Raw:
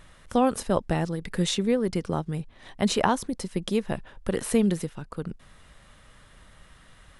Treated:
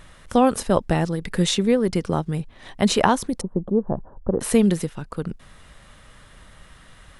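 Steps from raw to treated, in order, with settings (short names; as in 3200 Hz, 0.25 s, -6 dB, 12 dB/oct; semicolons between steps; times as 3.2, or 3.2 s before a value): 3.41–4.41 inverse Chebyshev low-pass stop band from 2100 Hz, stop band 40 dB; gain +5 dB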